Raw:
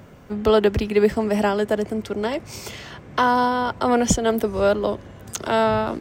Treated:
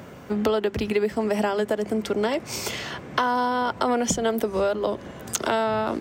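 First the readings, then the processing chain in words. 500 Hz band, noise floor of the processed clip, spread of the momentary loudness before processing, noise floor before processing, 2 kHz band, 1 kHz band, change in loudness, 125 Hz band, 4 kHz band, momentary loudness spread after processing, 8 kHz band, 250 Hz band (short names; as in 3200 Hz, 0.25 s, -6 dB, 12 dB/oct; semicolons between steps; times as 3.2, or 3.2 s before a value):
-4.0 dB, -42 dBFS, 15 LU, -44 dBFS, -2.5 dB, -3.5 dB, -4.0 dB, -6.0 dB, -1.0 dB, 6 LU, -0.5 dB, -3.5 dB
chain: HPF 130 Hz 6 dB/oct; notches 50/100/150/200 Hz; compressor 6:1, threshold -26 dBFS, peak gain reduction 13 dB; gain +5.5 dB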